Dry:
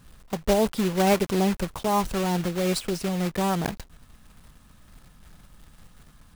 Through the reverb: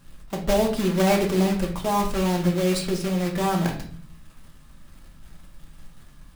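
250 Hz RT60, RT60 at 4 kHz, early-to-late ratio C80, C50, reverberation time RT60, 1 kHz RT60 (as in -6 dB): 0.80 s, 0.40 s, 12.5 dB, 8.5 dB, 0.50 s, 0.45 s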